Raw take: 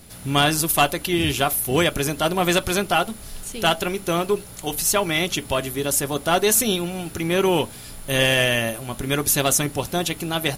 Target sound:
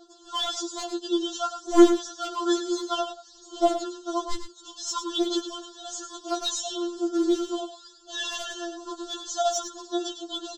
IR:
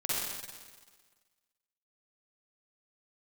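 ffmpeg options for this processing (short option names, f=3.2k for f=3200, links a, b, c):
-filter_complex "[0:a]highpass=160,aphaser=in_gain=1:out_gain=1:delay=2.5:decay=0.74:speed=0.56:type=sinusoidal,aresample=16000,acrusher=bits=3:mode=log:mix=0:aa=0.000001,aresample=44100,asuperstop=centerf=2200:order=8:qfactor=1.4,aeval=exprs='clip(val(0),-1,0.316)':c=same,asplit=2[a][b];[b]aecho=0:1:104:0.335[c];[a][c]amix=inputs=2:normalize=0,afftfilt=real='re*4*eq(mod(b,16),0)':imag='im*4*eq(mod(b,16),0)':win_size=2048:overlap=0.75,volume=-7.5dB"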